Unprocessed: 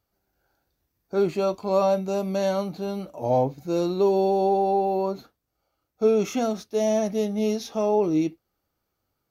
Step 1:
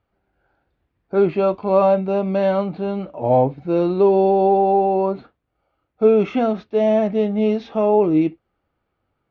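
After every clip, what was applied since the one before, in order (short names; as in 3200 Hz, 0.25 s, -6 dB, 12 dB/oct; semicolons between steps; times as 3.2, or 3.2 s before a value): LPF 3000 Hz 24 dB/oct; gain +6 dB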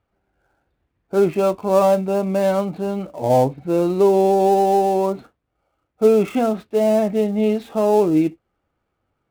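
switching dead time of 0.073 ms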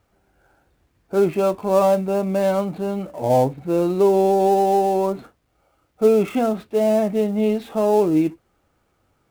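G.711 law mismatch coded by mu; gain -1.5 dB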